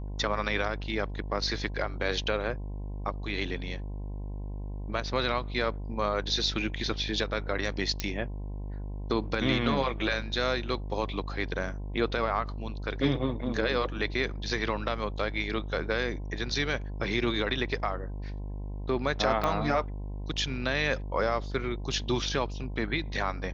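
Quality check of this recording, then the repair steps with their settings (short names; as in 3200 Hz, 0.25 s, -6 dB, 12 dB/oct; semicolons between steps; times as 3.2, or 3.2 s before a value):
buzz 50 Hz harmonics 21 -36 dBFS
8 pop -13 dBFS
19.44 pop -16 dBFS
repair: de-click; de-hum 50 Hz, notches 21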